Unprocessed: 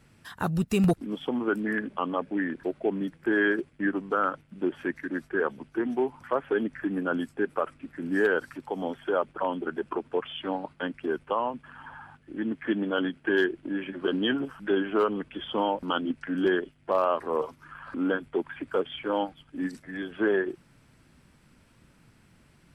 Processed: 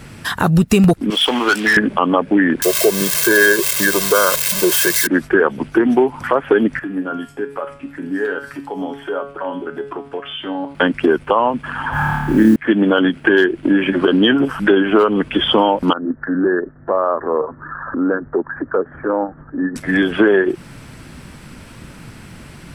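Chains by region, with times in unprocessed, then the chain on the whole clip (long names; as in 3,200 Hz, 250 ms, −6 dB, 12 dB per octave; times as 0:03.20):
0:01.10–0:01.77: resonant band-pass 4,500 Hz, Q 0.9 + leveller curve on the samples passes 3
0:02.62–0:05.07: spike at every zero crossing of −20 dBFS + comb filter 1.9 ms, depth 99%
0:06.79–0:10.75: downward compressor 2 to 1, threshold −39 dBFS + tuned comb filter 140 Hz, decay 0.47 s, mix 80%
0:11.92–0:12.56: low-shelf EQ 250 Hz +10 dB + flutter between parallel walls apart 4.7 metres, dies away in 1 s + noise that follows the level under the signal 31 dB
0:15.93–0:19.76: Chebyshev low-pass with heavy ripple 1,800 Hz, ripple 3 dB + downward compressor 1.5 to 1, threshold −55 dBFS
whole clip: downward compressor 4 to 1, threshold −33 dBFS; boost into a limiter +23 dB; level −1 dB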